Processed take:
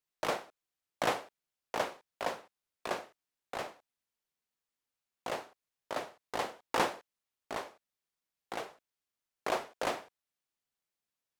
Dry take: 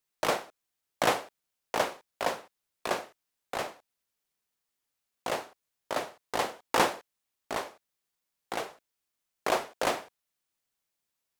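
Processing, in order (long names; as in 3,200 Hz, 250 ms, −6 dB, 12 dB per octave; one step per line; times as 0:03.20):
high-shelf EQ 6,900 Hz −5 dB
level −5 dB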